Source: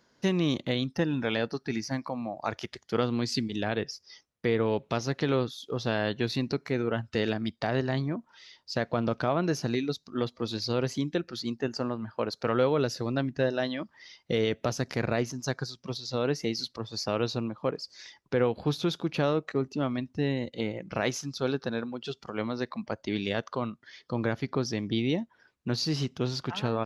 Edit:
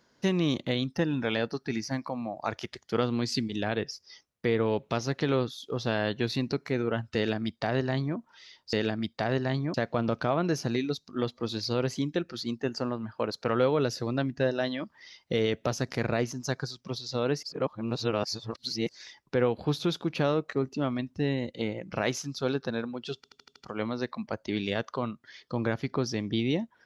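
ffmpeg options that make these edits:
-filter_complex "[0:a]asplit=10[a][b][c][d][e][f][g][h][i][j];[a]atrim=end=8.732[k];[b]atrim=start=7.158:end=8.172[l];[c]atrim=start=8.728:end=16.422[m];[d]atrim=start=16.418:end=17.882,asetpts=PTS-STARTPTS,areverse[n];[e]atrim=start=17.878:end=22.232[o];[f]atrim=start=22.148:end=22.232[p];[g]atrim=start=22.148:end=22.232[q];[h]atrim=start=22.148:end=22.232[r];[i]atrim=start=22.148:end=22.232[s];[j]atrim=start=22.148[t];[k][l]acrossfade=d=0.004:c1=hsin:c2=hsin[u];[u][m]acrossfade=d=0.004:c1=hsin:c2=hsin[v];[v][n]acrossfade=d=0.004:c1=hsin:c2=hsin[w];[w][o]acrossfade=d=0.004:c1=hsin:c2=hsin[x];[x][p]acrossfade=d=0.004:c1=hsin:c2=hsin[y];[y][q]acrossfade=d=0.004:c1=hsin:c2=hsin[z];[z][r]acrossfade=d=0.004:c1=hsin:c2=hsin[aa];[aa][s]acrossfade=d=0.004:c1=hsin:c2=hsin[ab];[ab][t]acrossfade=d=0.004:c1=hsin:c2=hsin"

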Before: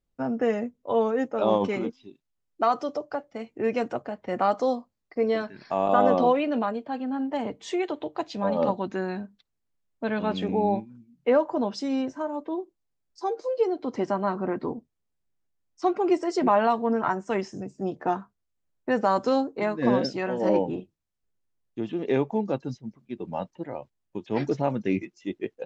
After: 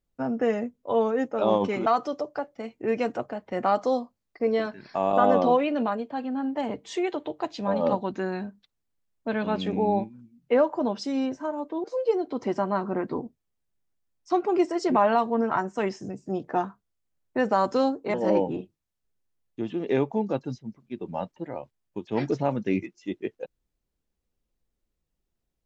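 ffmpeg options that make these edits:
-filter_complex "[0:a]asplit=4[a][b][c][d];[a]atrim=end=1.862[e];[b]atrim=start=2.618:end=12.602[f];[c]atrim=start=13.358:end=19.662[g];[d]atrim=start=20.328[h];[e][f]acrossfade=d=0.004:c1=hsin:c2=hsin[i];[i][g]acrossfade=d=0.004:c1=hsin:c2=hsin[j];[j][h]acrossfade=d=0.004:c1=hsin:c2=hsin"

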